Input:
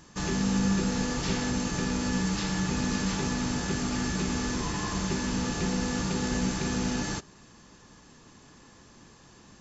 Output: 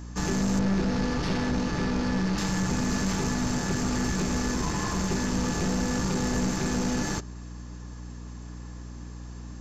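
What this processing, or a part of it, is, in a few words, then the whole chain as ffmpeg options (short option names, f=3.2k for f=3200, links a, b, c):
valve amplifier with mains hum: -filter_complex "[0:a]asettb=1/sr,asplit=3[a][b][c];[a]atrim=end=0.594[d];[b]atrim=start=0.59:end=2.38,asetpts=PTS-STARTPTS,afade=t=in:d=0.004:c=qsin,afade=t=out:st=1.786:d=0.004:c=qsin,lowpass=f=5.1k:w=0.5412,lowpass=f=5.1k:w=1.3066[e];[c]atrim=start=2.376[f];[d][e]acrossfade=d=0.004:c1=hsin:c2=qsin[g];[g][f]acrossfade=d=0.004:c1=qsin:c2=hsin,equalizer=f=3.2k:t=o:w=1.1:g=-5,aeval=exprs='(tanh(22.4*val(0)+0.4)-tanh(0.4))/22.4':c=same,aeval=exprs='val(0)+0.00631*(sin(2*PI*60*n/s)+sin(2*PI*2*60*n/s)/2+sin(2*PI*3*60*n/s)/3+sin(2*PI*4*60*n/s)/4+sin(2*PI*5*60*n/s)/5)':c=same,volume=5.5dB"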